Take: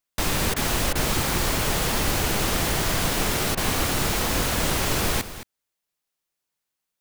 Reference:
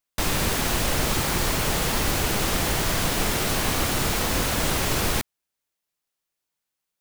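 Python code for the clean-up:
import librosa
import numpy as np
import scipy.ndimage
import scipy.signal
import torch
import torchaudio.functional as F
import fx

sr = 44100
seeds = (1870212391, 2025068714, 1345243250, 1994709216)

y = fx.fix_interpolate(x, sr, at_s=(0.54, 0.93, 3.55), length_ms=22.0)
y = fx.fix_echo_inverse(y, sr, delay_ms=218, level_db=-13.5)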